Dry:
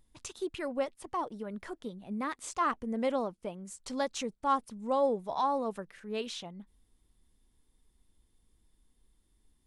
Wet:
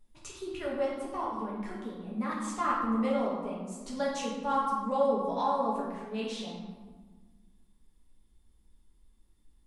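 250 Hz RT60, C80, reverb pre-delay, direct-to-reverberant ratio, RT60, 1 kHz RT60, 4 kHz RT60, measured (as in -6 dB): 2.1 s, 3.5 dB, 4 ms, -6.0 dB, 1.5 s, 1.4 s, 0.80 s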